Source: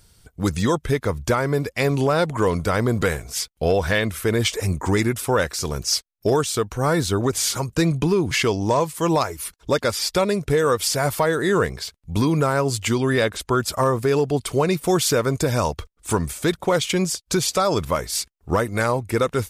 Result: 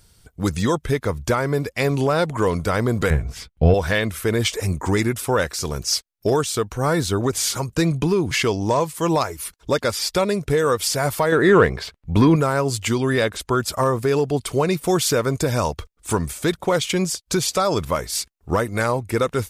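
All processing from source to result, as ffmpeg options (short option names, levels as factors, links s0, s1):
-filter_complex "[0:a]asettb=1/sr,asplit=3[s0][s1][s2];[s0]atrim=end=3.104[s3];[s1]atrim=start=3.1:end=3.74,asetpts=PTS-STARTPTS,afade=t=in:d=0.004:c=qsin,afade=t=out:st=0.636:d=0.004:c=qsin,bass=f=250:g=11,treble=f=4000:g=-15,asplit=2[s4][s5];[s5]adelay=13,volume=0.211[s6];[s4][s6]amix=inputs=2:normalize=0,atrim=end_sample=28224[s7];[s2]atrim=start=3.736[s8];[s3][s7]acrossfade=d=0.004:c1=hsin:c2=qsin[s9];[s9][s8]acrossfade=d=0.004:c1=qsin:c2=hsin,asettb=1/sr,asplit=3[s10][s11][s12];[s10]atrim=end=11.324[s13];[s11]atrim=start=11.32:end=12.36,asetpts=PTS-STARTPTS,afade=t=in:d=0.004:c=qsin,afade=t=out:st=1.036:d=0.004:c=qsin,bass=f=250:g=-2,treble=f=4000:g=-14,acontrast=83[s14];[s12]atrim=start=12.356[s15];[s13][s14]acrossfade=d=0.004:c1=hsin:c2=qsin[s16];[s16][s15]acrossfade=d=0.004:c1=qsin:c2=hsin"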